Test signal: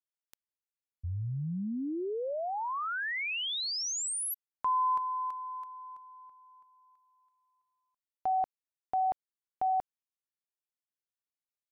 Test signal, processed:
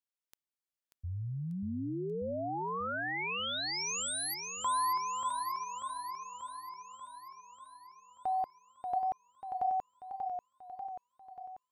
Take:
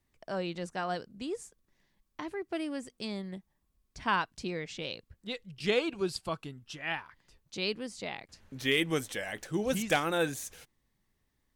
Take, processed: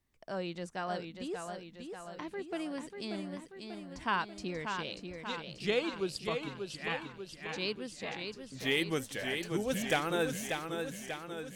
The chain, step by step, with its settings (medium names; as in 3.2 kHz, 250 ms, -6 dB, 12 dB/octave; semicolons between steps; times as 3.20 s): modulated delay 588 ms, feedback 59%, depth 78 cents, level -6 dB; trim -3 dB